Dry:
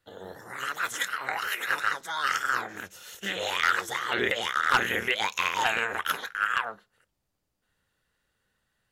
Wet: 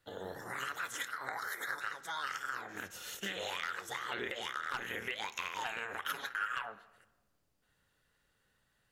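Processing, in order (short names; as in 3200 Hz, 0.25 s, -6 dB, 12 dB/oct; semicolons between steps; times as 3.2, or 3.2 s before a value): 1.11–1.81 Butterworth band-stop 2700 Hz, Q 1.7; compressor 5:1, threshold -37 dBFS, peak gain reduction 17.5 dB; 6.02–6.67 comb 7.2 ms, depth 93%; reverb RT60 1.2 s, pre-delay 7 ms, DRR 13.5 dB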